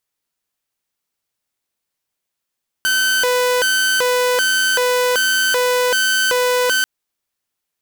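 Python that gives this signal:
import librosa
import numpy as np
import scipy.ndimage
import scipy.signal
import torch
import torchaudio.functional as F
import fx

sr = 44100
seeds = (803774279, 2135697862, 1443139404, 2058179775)

y = fx.siren(sr, length_s=3.99, kind='hi-lo', low_hz=497.0, high_hz=1530.0, per_s=1.3, wave='saw', level_db=-11.5)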